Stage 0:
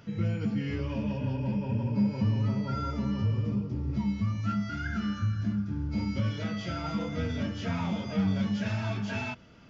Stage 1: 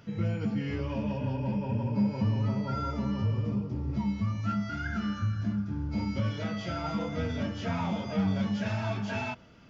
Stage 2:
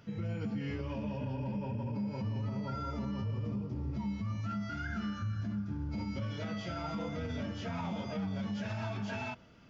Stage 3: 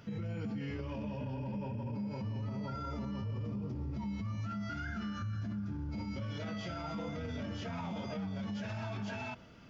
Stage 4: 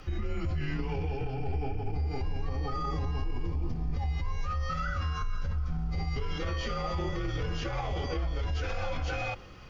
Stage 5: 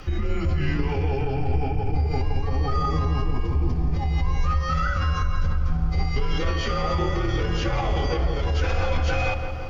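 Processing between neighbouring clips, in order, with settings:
dynamic equaliser 780 Hz, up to +5 dB, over −52 dBFS, Q 1.1; level −1 dB
brickwall limiter −25.5 dBFS, peak gain reduction 8 dB; level −3.5 dB
brickwall limiter −35 dBFS, peak gain reduction 6 dB; level +3 dB
frequency shifter −130 Hz; level +8 dB
feedback echo with a low-pass in the loop 168 ms, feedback 74%, low-pass 1,800 Hz, level −7.5 dB; level +7.5 dB

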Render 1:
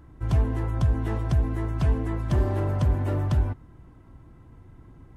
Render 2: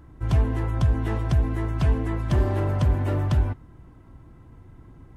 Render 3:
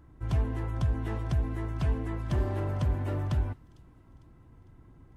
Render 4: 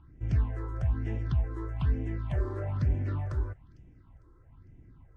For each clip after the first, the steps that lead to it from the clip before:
dynamic equaliser 2,700 Hz, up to +3 dB, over −49 dBFS, Q 0.79; level +1.5 dB
delay with a high-pass on its return 452 ms, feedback 48%, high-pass 3,600 Hz, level −19.5 dB; level −7 dB
all-pass phaser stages 6, 1.1 Hz, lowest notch 180–1,200 Hz; high-frequency loss of the air 90 metres

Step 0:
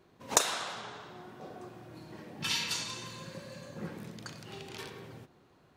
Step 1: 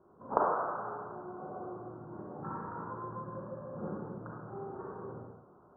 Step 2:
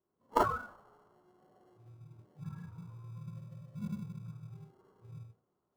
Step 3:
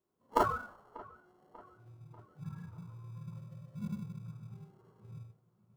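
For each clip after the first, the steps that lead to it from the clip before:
Butterworth low-pass 1,400 Hz 72 dB per octave; low-shelf EQ 220 Hz −6 dB; convolution reverb RT60 0.80 s, pre-delay 33 ms, DRR −2 dB; level +1 dB
noise reduction from a noise print of the clip's start 25 dB; dynamic equaliser 1,100 Hz, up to +4 dB, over −53 dBFS, Q 0.72; in parallel at −9.5 dB: decimation without filtering 36×; on the sum: level +1.5 dB
delay with a low-pass on its return 591 ms, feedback 49%, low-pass 2,500 Hz, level −20.5 dB

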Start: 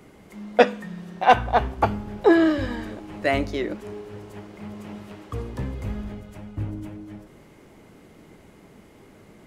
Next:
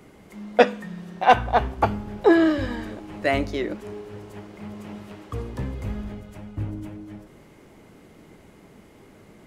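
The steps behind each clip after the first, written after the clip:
no processing that can be heard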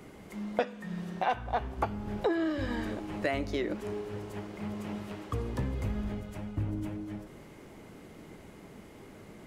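downward compressor 5 to 1, threshold −28 dBFS, peak gain reduction 17 dB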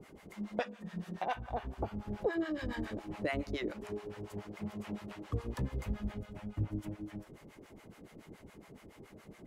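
two-band tremolo in antiphase 7.1 Hz, depth 100%, crossover 660 Hz

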